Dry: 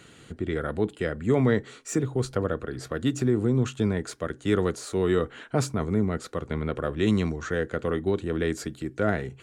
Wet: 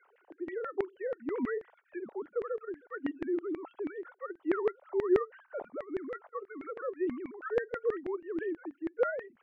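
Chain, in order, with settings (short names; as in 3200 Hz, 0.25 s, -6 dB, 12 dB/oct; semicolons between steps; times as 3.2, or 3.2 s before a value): sine-wave speech; tilt -2.5 dB/oct; LFO band-pass saw down 6.2 Hz 500–2000 Hz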